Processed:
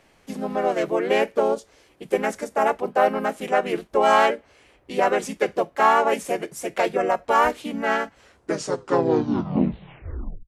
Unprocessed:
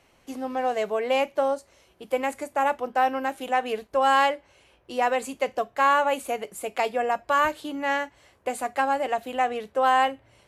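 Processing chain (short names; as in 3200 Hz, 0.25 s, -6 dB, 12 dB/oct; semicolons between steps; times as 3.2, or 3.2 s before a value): tape stop at the end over 2.34 s; harmoniser -7 st -9 dB, -4 st 0 dB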